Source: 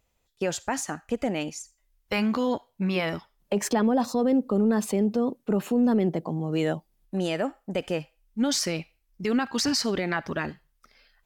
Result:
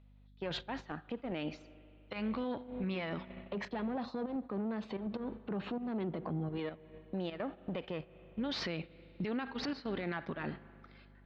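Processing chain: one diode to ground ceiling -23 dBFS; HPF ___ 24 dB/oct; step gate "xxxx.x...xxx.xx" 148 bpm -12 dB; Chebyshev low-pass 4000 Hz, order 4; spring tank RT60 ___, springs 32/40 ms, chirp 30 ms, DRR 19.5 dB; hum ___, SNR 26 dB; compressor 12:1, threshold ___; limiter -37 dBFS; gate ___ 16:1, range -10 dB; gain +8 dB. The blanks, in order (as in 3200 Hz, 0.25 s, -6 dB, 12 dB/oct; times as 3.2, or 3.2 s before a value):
94 Hz, 2.7 s, 50 Hz, -38 dBFS, -50 dBFS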